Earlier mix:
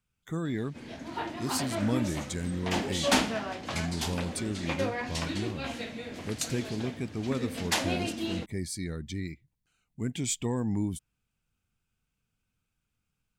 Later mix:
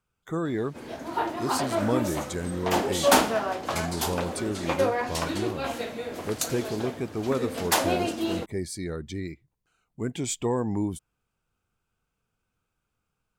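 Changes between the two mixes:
background: remove distance through air 54 m; master: add high-order bell 700 Hz +8 dB 2.4 oct

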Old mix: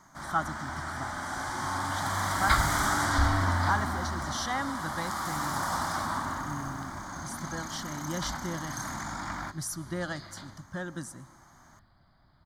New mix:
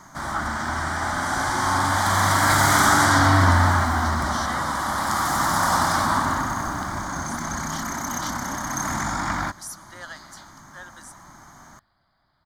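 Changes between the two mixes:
speech: add high-pass 920 Hz 12 dB/octave; first sound +10.5 dB; second sound: add bass shelf 350 Hz -10.5 dB

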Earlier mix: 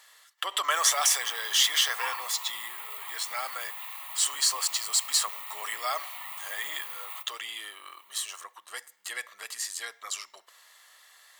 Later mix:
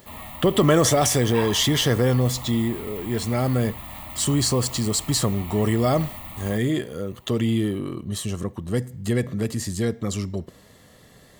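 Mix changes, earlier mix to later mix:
background: entry -0.65 s; master: remove high-pass 970 Hz 24 dB/octave

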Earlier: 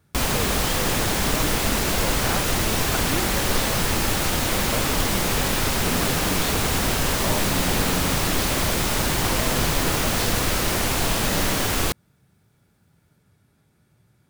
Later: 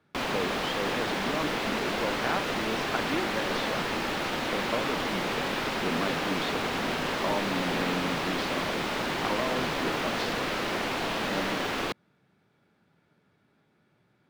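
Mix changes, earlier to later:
background -4.0 dB; master: add three-band isolator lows -18 dB, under 180 Hz, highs -19 dB, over 4.3 kHz

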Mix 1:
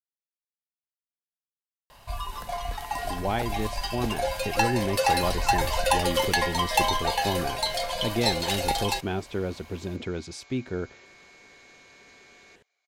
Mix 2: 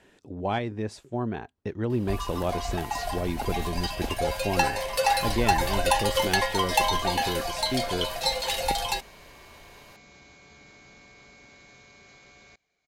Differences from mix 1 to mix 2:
speech: entry -2.80 s; second sound: remove high-pass 650 Hz 12 dB/octave

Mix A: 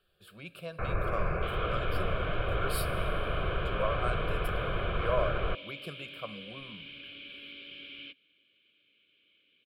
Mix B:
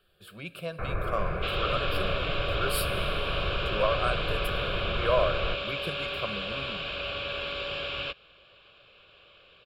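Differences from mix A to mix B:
speech +5.5 dB; second sound: remove vowel filter i

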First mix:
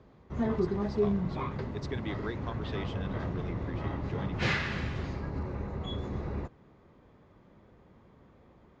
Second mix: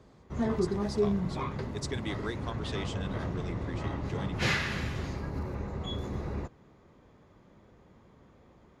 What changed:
speech: remove distance through air 110 m; master: remove distance through air 110 m

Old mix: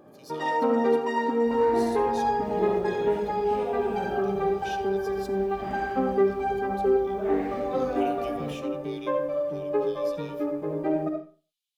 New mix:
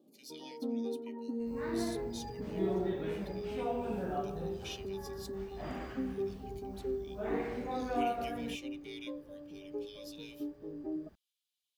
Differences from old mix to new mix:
first sound: add ladder band-pass 280 Hz, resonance 50%; reverb: off

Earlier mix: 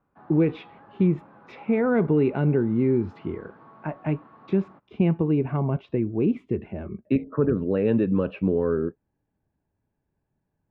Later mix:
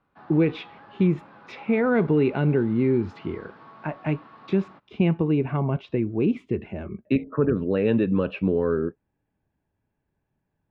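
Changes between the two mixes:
background: add treble shelf 3 kHz +10.5 dB; master: add peaking EQ 6.1 kHz +9 dB 3 oct

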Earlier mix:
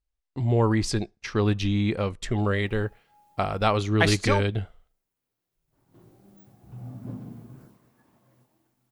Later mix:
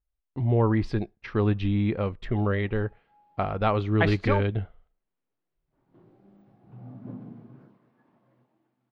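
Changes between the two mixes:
background: add high-pass 150 Hz; master: add distance through air 370 m

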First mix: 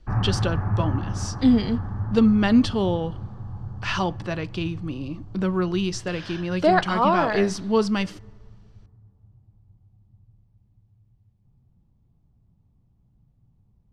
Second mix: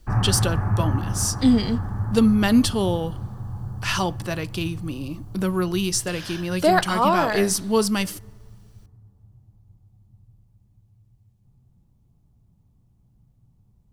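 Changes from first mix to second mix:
background: send +6.5 dB; master: remove distance through air 150 m

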